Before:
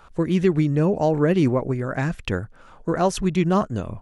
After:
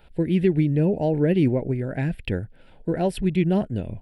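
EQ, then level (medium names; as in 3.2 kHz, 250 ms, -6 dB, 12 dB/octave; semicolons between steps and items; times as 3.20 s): dynamic bell 4 kHz, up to -4 dB, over -47 dBFS, Q 1.3; static phaser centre 2.8 kHz, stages 4; 0.0 dB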